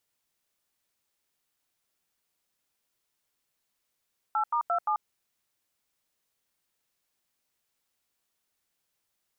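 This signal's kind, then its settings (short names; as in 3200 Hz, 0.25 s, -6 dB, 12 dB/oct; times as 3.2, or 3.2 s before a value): DTMF "8*27", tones 88 ms, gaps 86 ms, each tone -26.5 dBFS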